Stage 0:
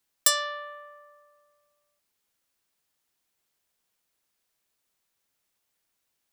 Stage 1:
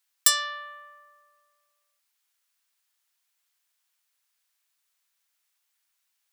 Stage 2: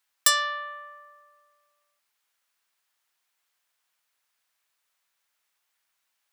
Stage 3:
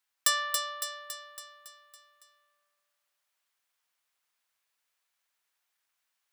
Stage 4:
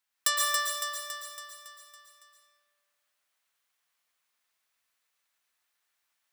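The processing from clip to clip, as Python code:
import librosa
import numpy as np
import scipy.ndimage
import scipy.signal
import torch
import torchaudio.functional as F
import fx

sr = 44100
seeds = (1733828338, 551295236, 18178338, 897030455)

y1 = scipy.signal.sosfilt(scipy.signal.butter(2, 1100.0, 'highpass', fs=sr, output='sos'), x)
y1 = y1 * librosa.db_to_amplitude(2.0)
y2 = fx.high_shelf(y1, sr, hz=2600.0, db=-9.0)
y2 = y2 * librosa.db_to_amplitude(6.5)
y3 = fx.echo_feedback(y2, sr, ms=279, feedback_pct=56, wet_db=-5)
y3 = y3 * librosa.db_to_amplitude(-5.5)
y4 = fx.rev_plate(y3, sr, seeds[0], rt60_s=0.76, hf_ratio=0.85, predelay_ms=105, drr_db=-1.5)
y4 = y4 * librosa.db_to_amplitude(-1.5)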